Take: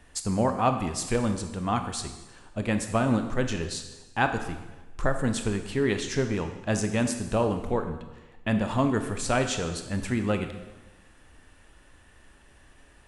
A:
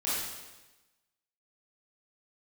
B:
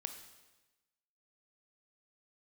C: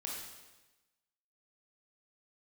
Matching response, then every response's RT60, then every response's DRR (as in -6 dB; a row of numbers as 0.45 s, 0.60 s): B; 1.1 s, 1.1 s, 1.1 s; -10.5 dB, 6.5 dB, -3.5 dB